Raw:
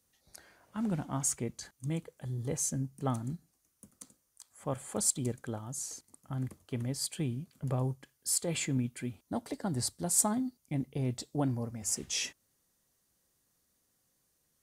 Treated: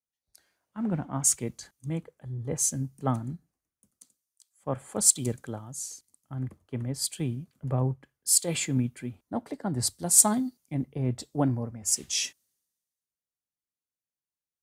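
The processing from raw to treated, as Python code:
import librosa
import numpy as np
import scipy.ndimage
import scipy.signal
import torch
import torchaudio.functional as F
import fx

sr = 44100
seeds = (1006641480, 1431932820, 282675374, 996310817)

y = fx.band_widen(x, sr, depth_pct=70)
y = F.gain(torch.from_numpy(y), 3.0).numpy()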